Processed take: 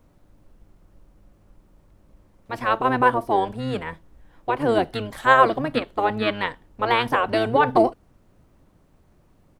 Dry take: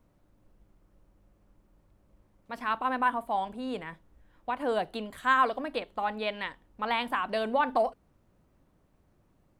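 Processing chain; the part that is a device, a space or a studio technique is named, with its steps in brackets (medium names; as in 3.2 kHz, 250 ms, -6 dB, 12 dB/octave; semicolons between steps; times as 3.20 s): octave pedal (harmony voices -12 st -4 dB); trim +7.5 dB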